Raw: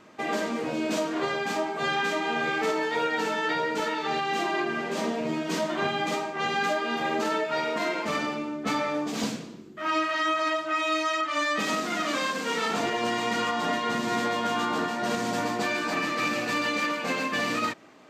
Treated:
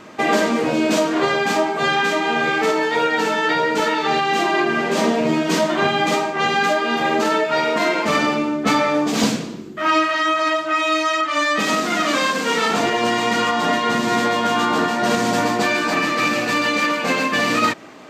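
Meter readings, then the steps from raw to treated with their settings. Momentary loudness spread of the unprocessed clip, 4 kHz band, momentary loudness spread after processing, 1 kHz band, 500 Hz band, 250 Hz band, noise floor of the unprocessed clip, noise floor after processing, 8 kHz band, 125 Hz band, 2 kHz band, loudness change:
3 LU, +9.0 dB, 1 LU, +9.0 dB, +9.0 dB, +9.5 dB, -39 dBFS, -28 dBFS, +9.0 dB, +9.5 dB, +9.0 dB, +9.0 dB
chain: vocal rider; gain +9 dB

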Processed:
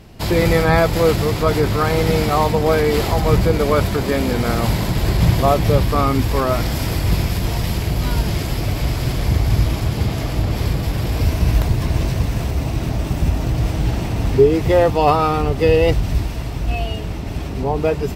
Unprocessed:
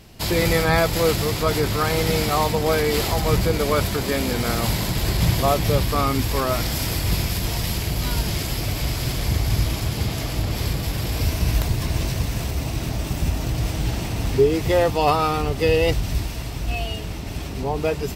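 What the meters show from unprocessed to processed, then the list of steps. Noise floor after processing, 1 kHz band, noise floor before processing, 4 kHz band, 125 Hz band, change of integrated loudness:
-25 dBFS, +4.0 dB, -29 dBFS, -1.5 dB, +5.0 dB, +4.0 dB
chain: high shelf 2500 Hz -9 dB; gain +5 dB

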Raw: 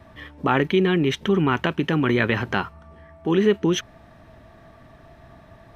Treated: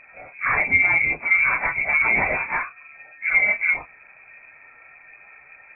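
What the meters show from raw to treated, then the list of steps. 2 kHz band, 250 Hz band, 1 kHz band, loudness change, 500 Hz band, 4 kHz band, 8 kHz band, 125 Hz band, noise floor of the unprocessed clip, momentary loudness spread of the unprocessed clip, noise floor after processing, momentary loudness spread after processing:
+10.5 dB, -19.5 dB, -0.5 dB, +3.0 dB, -13.0 dB, under -35 dB, n/a, -15.5 dB, -50 dBFS, 8 LU, -50 dBFS, 10 LU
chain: phase scrambler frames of 0.1 s; inverted band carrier 2500 Hz

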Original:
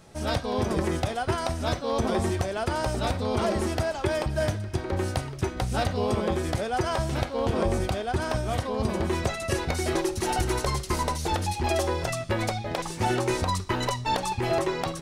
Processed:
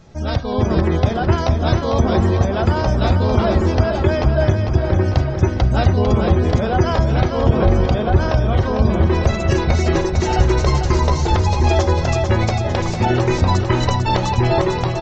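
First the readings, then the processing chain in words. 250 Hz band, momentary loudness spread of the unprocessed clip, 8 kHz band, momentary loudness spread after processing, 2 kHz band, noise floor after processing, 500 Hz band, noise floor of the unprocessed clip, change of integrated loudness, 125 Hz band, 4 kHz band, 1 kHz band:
+10.0 dB, 3 LU, +1.5 dB, 2 LU, +6.5 dB, -22 dBFS, +8.5 dB, -37 dBFS, +10.5 dB, +14.0 dB, +5.5 dB, +7.5 dB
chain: spectral gate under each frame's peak -30 dB strong; low shelf 200 Hz +9 dB; AGC gain up to 4 dB; on a send: feedback echo 0.449 s, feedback 57%, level -6.5 dB; on the sum: downsampling 16000 Hz; gain +2 dB

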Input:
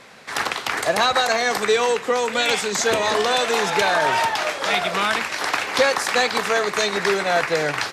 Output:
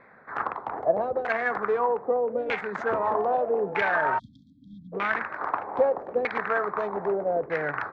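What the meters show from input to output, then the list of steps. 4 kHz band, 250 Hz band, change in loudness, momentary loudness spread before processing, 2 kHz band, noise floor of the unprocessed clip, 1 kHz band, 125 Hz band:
-26.5 dB, -6.5 dB, -7.0 dB, 5 LU, -8.5 dB, -34 dBFS, -6.0 dB, -7.0 dB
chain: Wiener smoothing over 15 samples; spectral delete 4.18–4.93, 290–3200 Hz; LFO low-pass saw down 0.8 Hz 420–2200 Hz; gain -7.5 dB

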